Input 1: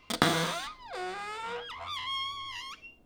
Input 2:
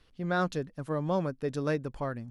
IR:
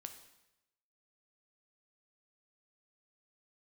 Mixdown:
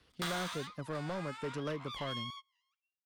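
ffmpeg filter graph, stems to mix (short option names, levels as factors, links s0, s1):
-filter_complex "[0:a]highpass=f=880:w=0.5412,highpass=f=880:w=1.3066,volume=0.422[s0];[1:a]highpass=66,acrossover=split=340|710|1500[s1][s2][s3][s4];[s1]acompressor=threshold=0.0112:ratio=4[s5];[s2]acompressor=threshold=0.00891:ratio=4[s6];[s3]acompressor=threshold=0.00794:ratio=4[s7];[s4]acompressor=threshold=0.00282:ratio=4[s8];[s5][s6][s7][s8]amix=inputs=4:normalize=0,volume=0.891,asplit=2[s9][s10];[s10]apad=whole_len=134705[s11];[s0][s11]sidechaingate=range=0.0224:threshold=0.00126:ratio=16:detection=peak[s12];[s12][s9]amix=inputs=2:normalize=0,volume=37.6,asoftclip=hard,volume=0.0266"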